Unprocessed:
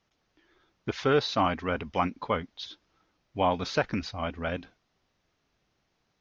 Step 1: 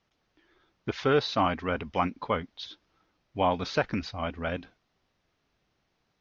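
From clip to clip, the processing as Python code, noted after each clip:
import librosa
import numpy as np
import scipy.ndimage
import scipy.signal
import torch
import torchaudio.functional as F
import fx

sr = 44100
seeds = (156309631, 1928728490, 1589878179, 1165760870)

y = scipy.signal.sosfilt(scipy.signal.butter(2, 6100.0, 'lowpass', fs=sr, output='sos'), x)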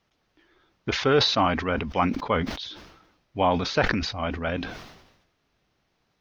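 y = fx.sustainer(x, sr, db_per_s=58.0)
y = y * librosa.db_to_amplitude(3.0)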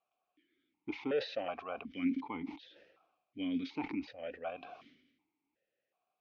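y = fx.vowel_held(x, sr, hz=2.7)
y = y * librosa.db_to_amplitude(-2.5)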